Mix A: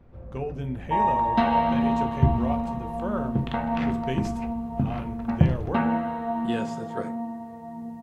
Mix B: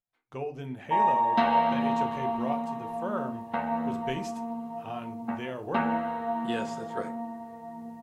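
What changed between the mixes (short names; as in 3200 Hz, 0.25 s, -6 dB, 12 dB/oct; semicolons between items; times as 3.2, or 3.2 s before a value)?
first sound: muted; master: add low shelf 240 Hz -10.5 dB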